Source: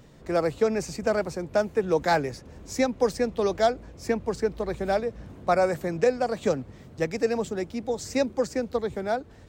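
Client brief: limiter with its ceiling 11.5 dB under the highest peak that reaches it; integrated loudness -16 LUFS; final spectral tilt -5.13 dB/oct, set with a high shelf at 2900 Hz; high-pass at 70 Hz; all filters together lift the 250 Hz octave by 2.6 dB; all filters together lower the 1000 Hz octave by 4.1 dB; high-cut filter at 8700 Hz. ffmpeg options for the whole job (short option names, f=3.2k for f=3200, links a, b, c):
-af "highpass=70,lowpass=8.7k,equalizer=f=250:t=o:g=3.5,equalizer=f=1k:t=o:g=-6.5,highshelf=f=2.9k:g=-3.5,volume=16.5dB,alimiter=limit=-6dB:level=0:latency=1"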